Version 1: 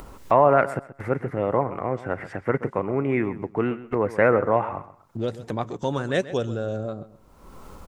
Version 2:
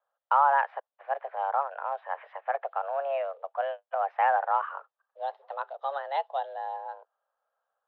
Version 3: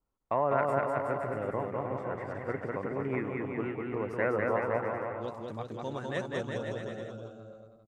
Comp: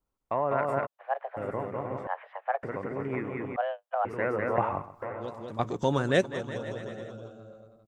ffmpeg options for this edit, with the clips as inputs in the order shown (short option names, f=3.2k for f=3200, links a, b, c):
-filter_complex "[1:a]asplit=3[a][b][c];[0:a]asplit=2[d][e];[2:a]asplit=6[f][g][h][i][j][k];[f]atrim=end=0.87[l];[a]atrim=start=0.85:end=1.38[m];[g]atrim=start=1.36:end=2.072[n];[b]atrim=start=2.068:end=2.632[o];[h]atrim=start=2.628:end=3.562[p];[c]atrim=start=3.558:end=4.052[q];[i]atrim=start=4.048:end=4.582[r];[d]atrim=start=4.578:end=5.022[s];[j]atrim=start=5.018:end=5.592[t];[e]atrim=start=5.588:end=6.242[u];[k]atrim=start=6.238[v];[l][m]acrossfade=d=0.02:c1=tri:c2=tri[w];[w][n]acrossfade=d=0.02:c1=tri:c2=tri[x];[x][o]acrossfade=d=0.004:c1=hsin:c2=hsin[y];[y][p]acrossfade=d=0.004:c1=hsin:c2=hsin[z];[z][q]acrossfade=d=0.004:c1=hsin:c2=hsin[aa];[aa][r]acrossfade=d=0.004:c1=hsin:c2=hsin[ab];[ab][s]acrossfade=d=0.004:c1=hsin:c2=hsin[ac];[ac][t]acrossfade=d=0.004:c1=hsin:c2=hsin[ad];[ad][u]acrossfade=d=0.004:c1=hsin:c2=hsin[ae];[ae][v]acrossfade=d=0.004:c1=hsin:c2=hsin"